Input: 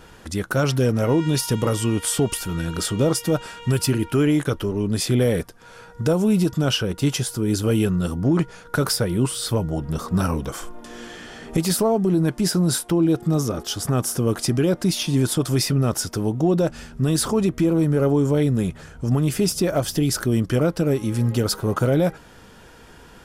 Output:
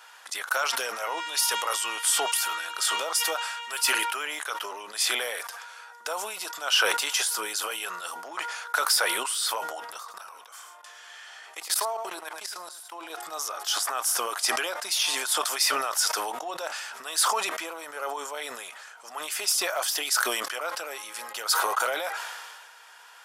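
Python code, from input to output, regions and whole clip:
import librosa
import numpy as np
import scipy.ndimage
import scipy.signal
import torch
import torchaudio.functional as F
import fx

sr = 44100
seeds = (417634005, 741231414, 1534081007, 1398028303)

y = fx.chain(x, sr, fx.low_shelf(hz=350.0, db=-4.5),
    fx.level_steps(step_db=22),
    fx.echo_single(ms=109, db=-14.5), at=(9.98, 13.1))
y = scipy.signal.sosfilt(scipy.signal.butter(4, 810.0, 'highpass', fs=sr, output='sos'), y)
y = fx.sustainer(y, sr, db_per_s=32.0)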